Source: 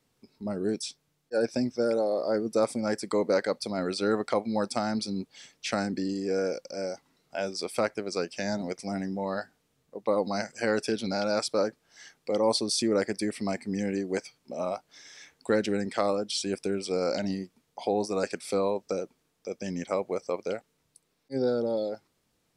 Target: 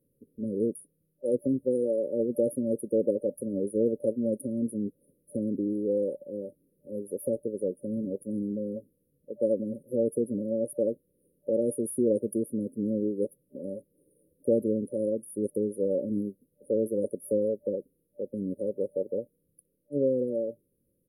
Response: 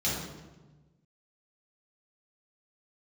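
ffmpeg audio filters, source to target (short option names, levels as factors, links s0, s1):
-af "asetrate=47187,aresample=44100,afftfilt=real='re*(1-between(b*sr/4096,590,9400))':imag='im*(1-between(b*sr/4096,590,9400))':win_size=4096:overlap=0.75,volume=1.19"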